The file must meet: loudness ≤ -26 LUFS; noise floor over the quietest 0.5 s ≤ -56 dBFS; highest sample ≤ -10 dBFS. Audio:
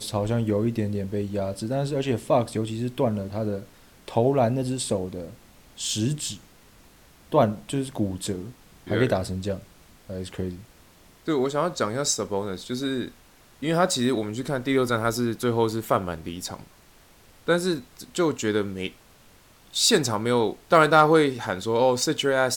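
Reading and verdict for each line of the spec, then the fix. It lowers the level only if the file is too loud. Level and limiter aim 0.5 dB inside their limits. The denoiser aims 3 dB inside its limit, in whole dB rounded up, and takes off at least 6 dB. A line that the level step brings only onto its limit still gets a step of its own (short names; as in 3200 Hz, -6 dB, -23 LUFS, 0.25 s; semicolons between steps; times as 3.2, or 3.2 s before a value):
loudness -25.0 LUFS: fail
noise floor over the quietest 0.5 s -54 dBFS: fail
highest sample -5.0 dBFS: fail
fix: denoiser 6 dB, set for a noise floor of -54 dBFS; gain -1.5 dB; limiter -10.5 dBFS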